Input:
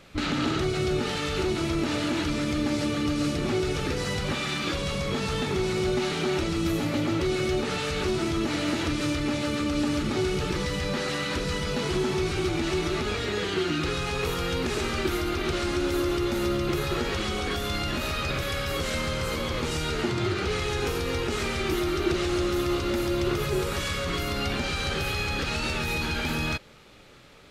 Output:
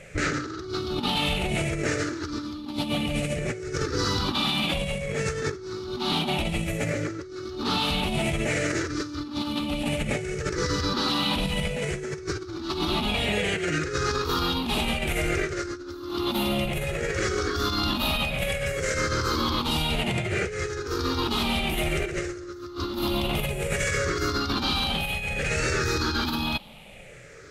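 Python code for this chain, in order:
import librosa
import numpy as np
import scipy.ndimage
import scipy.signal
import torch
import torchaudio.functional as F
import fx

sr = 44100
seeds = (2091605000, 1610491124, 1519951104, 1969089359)

y = fx.spec_ripple(x, sr, per_octave=0.51, drift_hz=-0.59, depth_db=15)
y = fx.highpass(y, sr, hz=110.0, slope=6, at=(16.04, 16.65))
y = fx.over_compress(y, sr, threshold_db=-27.0, ratio=-0.5)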